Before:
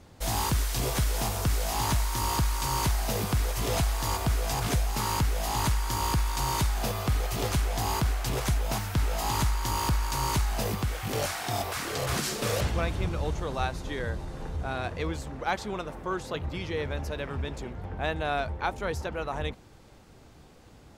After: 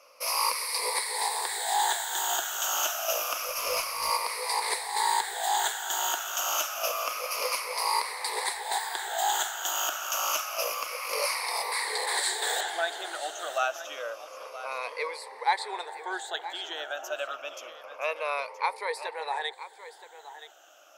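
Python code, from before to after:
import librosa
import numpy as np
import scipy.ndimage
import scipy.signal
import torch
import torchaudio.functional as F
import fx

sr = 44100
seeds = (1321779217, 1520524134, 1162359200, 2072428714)

p1 = fx.spec_ripple(x, sr, per_octave=0.91, drift_hz=-0.28, depth_db=18)
p2 = scipy.signal.sosfilt(scipy.signal.cheby2(4, 50, 210.0, 'highpass', fs=sr, output='sos'), p1)
p3 = fx.tube_stage(p2, sr, drive_db=19.0, bias=0.25, at=(3.48, 4.1))
y = p3 + fx.echo_single(p3, sr, ms=973, db=-14.0, dry=0)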